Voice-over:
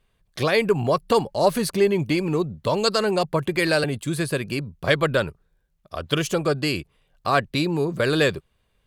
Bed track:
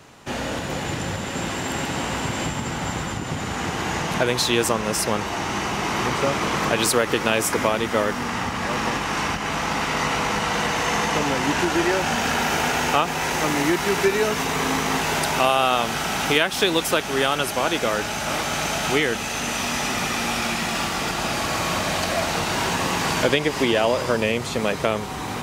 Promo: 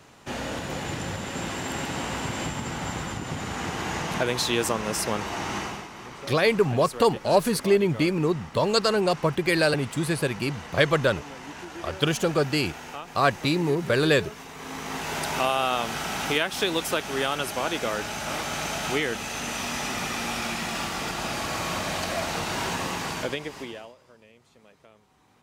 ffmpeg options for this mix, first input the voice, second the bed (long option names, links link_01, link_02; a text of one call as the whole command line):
ffmpeg -i stem1.wav -i stem2.wav -filter_complex "[0:a]adelay=5900,volume=-1dB[link_01];[1:a]volume=8dB,afade=type=out:start_time=5.56:duration=0.32:silence=0.211349,afade=type=in:start_time=14.56:duration=0.81:silence=0.237137,afade=type=out:start_time=22.72:duration=1.23:silence=0.0421697[link_02];[link_01][link_02]amix=inputs=2:normalize=0" out.wav